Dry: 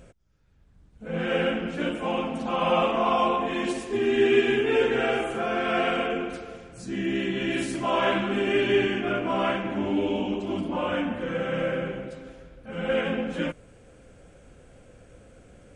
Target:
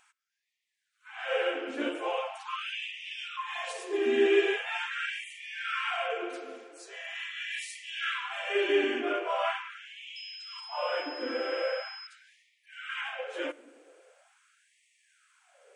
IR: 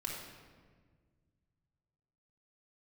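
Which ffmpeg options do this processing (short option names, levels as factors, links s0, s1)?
-filter_complex "[0:a]asettb=1/sr,asplit=3[s0][s1][s2];[s0]atrim=end=10.164[s3];[s1]atrim=start=10.16:end=12.07,asetpts=PTS-STARTPTS,afade=t=in:d=0.004:c=qsin,afade=t=out:st=1.906:d=0.004:c=qsin,aeval=exprs='val(0)+0.01*sin(2*PI*5100*n/s)':c=same[s4];[s2]atrim=start=12.066[s5];[s3][s4]acrossfade=d=0.004:c1=hsin:c2=qsin[s6];[s6][s5]acrossfade=d=0.004:c1=qsin:c2=hsin,asplit=2[s7][s8];[1:a]atrim=start_sample=2205[s9];[s8][s9]afir=irnorm=-1:irlink=0,volume=0.106[s10];[s7][s10]amix=inputs=2:normalize=0,afftfilt=real='re*gte(b*sr/1024,250*pow(1800/250,0.5+0.5*sin(2*PI*0.42*pts/sr)))':imag='im*gte(b*sr/1024,250*pow(1800/250,0.5+0.5*sin(2*PI*0.42*pts/sr)))':win_size=1024:overlap=0.75,volume=0.668"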